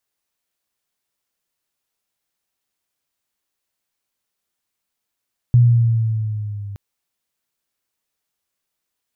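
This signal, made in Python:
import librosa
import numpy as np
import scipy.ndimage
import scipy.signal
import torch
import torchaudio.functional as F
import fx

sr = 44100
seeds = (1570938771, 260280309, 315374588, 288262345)

y = fx.riser_tone(sr, length_s=1.22, level_db=-7.0, wave='sine', hz=122.0, rise_st=-3.5, swell_db=-21)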